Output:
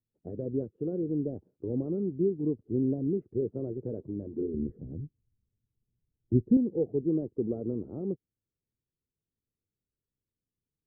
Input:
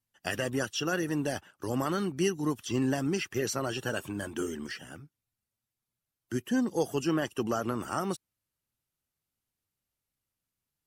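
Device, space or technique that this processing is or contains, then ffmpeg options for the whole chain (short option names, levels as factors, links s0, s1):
under water: -filter_complex "[0:a]lowpass=f=420:w=0.5412,lowpass=f=420:w=1.3066,equalizer=f=460:t=o:w=0.5:g=7,asettb=1/sr,asplit=3[s0][s1][s2];[s0]atrim=end=4.544[s3];[s1]atrim=start=4.54:end=6.57,asetpts=PTS-STARTPTS,afade=t=in:d=0.004:c=qsin,afade=t=out:st=2.026:d=0.004:c=qsin,aemphasis=mode=reproduction:type=riaa[s4];[s2]atrim=start=6.566[s5];[s3][s4]acrossfade=d=0.004:c1=hsin:c2=qsin[s6];[s6][s5]acrossfade=d=0.004:c1=qsin:c2=hsin"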